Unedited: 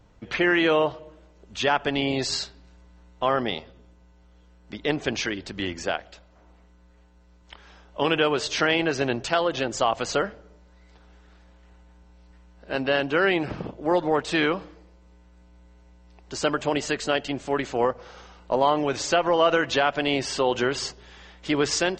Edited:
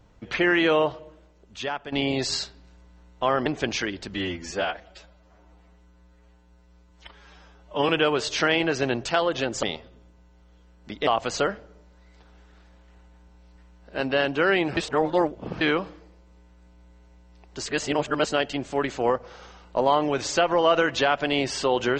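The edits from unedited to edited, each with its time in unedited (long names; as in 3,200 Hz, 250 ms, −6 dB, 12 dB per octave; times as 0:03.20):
0:00.98–0:01.92: fade out, to −13 dB
0:03.46–0:04.90: move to 0:09.82
0:05.58–0:08.08: time-stretch 1.5×
0:13.52–0:14.36: reverse
0:16.41–0:17.02: reverse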